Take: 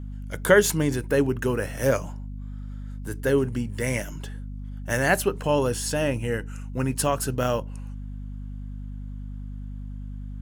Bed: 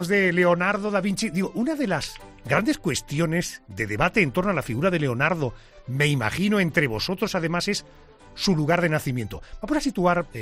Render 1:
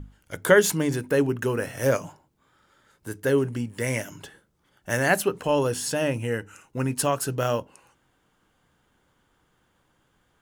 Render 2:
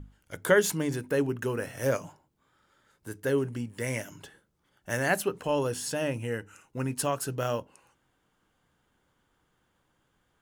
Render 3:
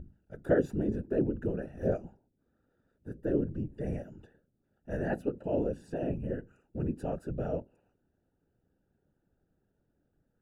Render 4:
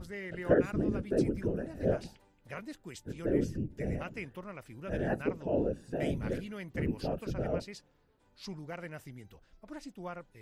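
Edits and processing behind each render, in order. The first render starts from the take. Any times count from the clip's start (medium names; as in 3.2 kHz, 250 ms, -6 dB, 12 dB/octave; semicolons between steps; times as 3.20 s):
hum notches 50/100/150/200/250 Hz
trim -5 dB
whisper effect; boxcar filter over 41 samples
add bed -21.5 dB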